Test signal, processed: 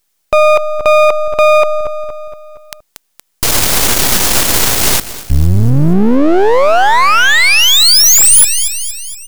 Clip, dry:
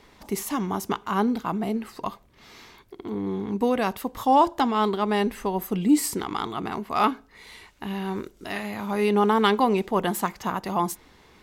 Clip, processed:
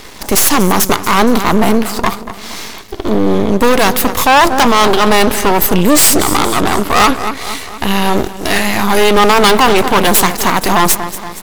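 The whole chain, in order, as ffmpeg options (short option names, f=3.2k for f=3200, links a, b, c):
-filter_complex "[0:a]bass=f=250:g=-3,treble=f=4k:g=7,asplit=2[a][b];[b]aecho=0:1:234|468|702|936|1170:0.15|0.0793|0.042|0.0223|0.0118[c];[a][c]amix=inputs=2:normalize=0,aeval=exprs='max(val(0),0)':c=same,apsyclip=25dB,volume=-1.5dB"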